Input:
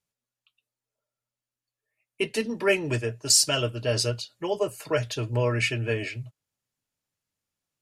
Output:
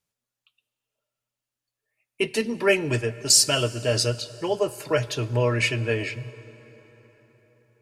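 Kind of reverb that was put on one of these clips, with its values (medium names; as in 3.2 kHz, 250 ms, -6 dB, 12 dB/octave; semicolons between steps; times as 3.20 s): plate-style reverb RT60 4.7 s, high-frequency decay 0.65×, DRR 16.5 dB; trim +2.5 dB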